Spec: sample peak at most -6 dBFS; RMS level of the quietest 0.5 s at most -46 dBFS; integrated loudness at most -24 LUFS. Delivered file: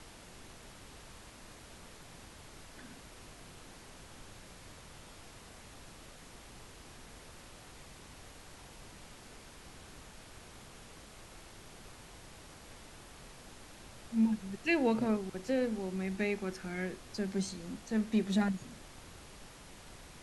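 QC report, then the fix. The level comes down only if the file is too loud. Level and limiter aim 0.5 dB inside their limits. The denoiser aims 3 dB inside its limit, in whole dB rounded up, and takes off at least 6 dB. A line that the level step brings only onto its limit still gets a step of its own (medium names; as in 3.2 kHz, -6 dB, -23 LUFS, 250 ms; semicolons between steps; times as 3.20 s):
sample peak -16.0 dBFS: pass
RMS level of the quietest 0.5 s -53 dBFS: pass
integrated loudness -34.0 LUFS: pass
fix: none needed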